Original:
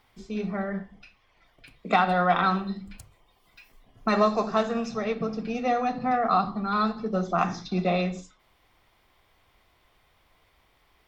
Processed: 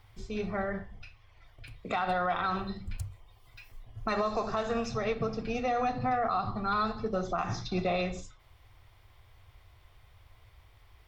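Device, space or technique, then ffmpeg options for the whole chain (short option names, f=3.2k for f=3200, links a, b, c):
car stereo with a boomy subwoofer: -af "lowshelf=f=140:t=q:w=3:g=9.5,alimiter=limit=-21dB:level=0:latency=1:release=97"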